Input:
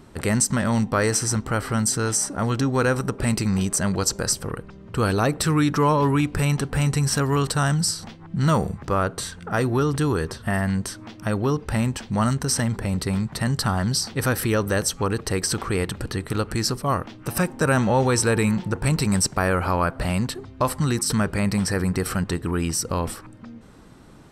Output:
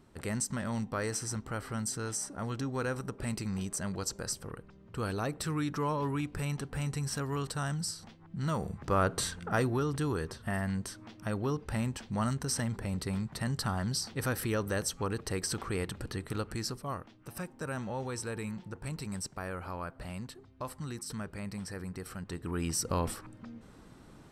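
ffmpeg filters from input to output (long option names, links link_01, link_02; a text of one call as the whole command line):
ffmpeg -i in.wav -af "volume=9dB,afade=type=in:start_time=8.58:duration=0.66:silence=0.298538,afade=type=out:start_time=9.24:duration=0.56:silence=0.421697,afade=type=out:start_time=16.29:duration=0.85:silence=0.421697,afade=type=in:start_time=22.21:duration=0.71:silence=0.266073" out.wav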